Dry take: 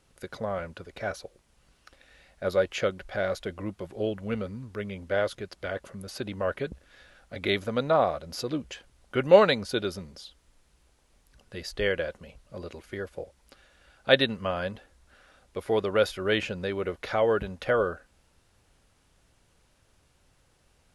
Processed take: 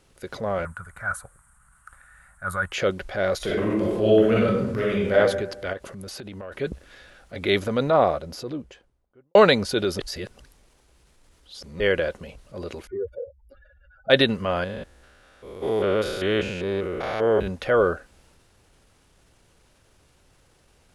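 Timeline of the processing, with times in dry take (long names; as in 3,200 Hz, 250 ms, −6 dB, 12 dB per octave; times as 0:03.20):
0:00.65–0:02.72: drawn EQ curve 110 Hz 0 dB, 190 Hz −5 dB, 300 Hz −21 dB, 440 Hz −22 dB, 970 Hz 0 dB, 1,400 Hz +10 dB, 2,600 Hz −15 dB, 5,300 Hz −20 dB, 8,700 Hz +11 dB, 14,000 Hz −5 dB
0:03.37–0:05.14: thrown reverb, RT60 0.83 s, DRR −6 dB
0:05.73–0:06.52: downward compressor 12 to 1, threshold −38 dBFS
0:07.72–0:09.35: fade out and dull
0:09.99–0:11.80: reverse
0:12.87–0:14.10: expanding power law on the bin magnitudes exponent 3.3
0:14.64–0:17.48: spectrum averaged block by block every 200 ms
whole clip: parametric band 390 Hz +3 dB 0.66 octaves; transient designer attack −4 dB, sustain +3 dB; level +5 dB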